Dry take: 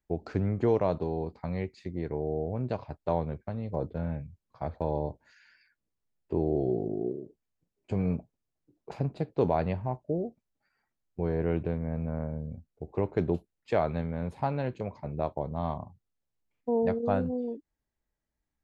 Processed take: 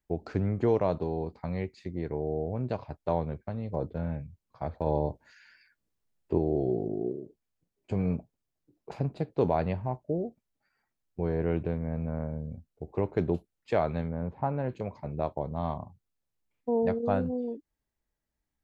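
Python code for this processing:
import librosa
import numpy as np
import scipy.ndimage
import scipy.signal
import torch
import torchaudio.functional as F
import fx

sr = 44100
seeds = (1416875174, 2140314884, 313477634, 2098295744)

y = fx.lowpass(x, sr, hz=fx.line((14.08, 1300.0), (14.68, 1700.0)), slope=12, at=(14.08, 14.68), fade=0.02)
y = fx.edit(y, sr, fx.clip_gain(start_s=4.86, length_s=1.52, db=3.0), tone=tone)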